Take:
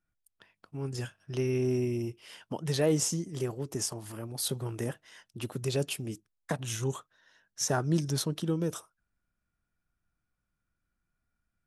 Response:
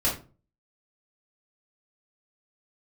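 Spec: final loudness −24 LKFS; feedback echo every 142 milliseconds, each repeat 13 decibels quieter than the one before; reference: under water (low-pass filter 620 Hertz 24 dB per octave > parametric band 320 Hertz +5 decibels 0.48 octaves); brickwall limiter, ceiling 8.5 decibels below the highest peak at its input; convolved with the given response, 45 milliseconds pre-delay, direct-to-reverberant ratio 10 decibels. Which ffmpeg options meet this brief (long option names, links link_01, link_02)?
-filter_complex "[0:a]alimiter=limit=-23.5dB:level=0:latency=1,aecho=1:1:142|284|426:0.224|0.0493|0.0108,asplit=2[link_01][link_02];[1:a]atrim=start_sample=2205,adelay=45[link_03];[link_02][link_03]afir=irnorm=-1:irlink=0,volume=-20.5dB[link_04];[link_01][link_04]amix=inputs=2:normalize=0,lowpass=frequency=620:width=0.5412,lowpass=frequency=620:width=1.3066,equalizer=frequency=320:width_type=o:width=0.48:gain=5,volume=9.5dB"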